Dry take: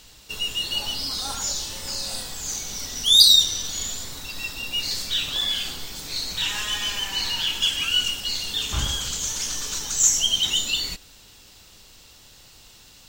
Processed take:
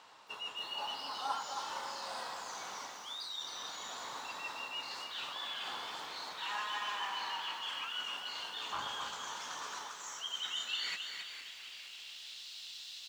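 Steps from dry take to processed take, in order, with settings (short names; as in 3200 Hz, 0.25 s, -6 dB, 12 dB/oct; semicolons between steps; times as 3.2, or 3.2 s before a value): HPF 72 Hz; low shelf 94 Hz -9 dB; reverse; compressor 6:1, threshold -30 dBFS, peak gain reduction 19.5 dB; reverse; band-pass sweep 1000 Hz -> 3700 Hz, 9.81–12.44; frequency-shifting echo 0.46 s, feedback 53%, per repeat +120 Hz, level -11.5 dB; lo-fi delay 0.27 s, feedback 35%, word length 11-bit, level -6 dB; gain +6.5 dB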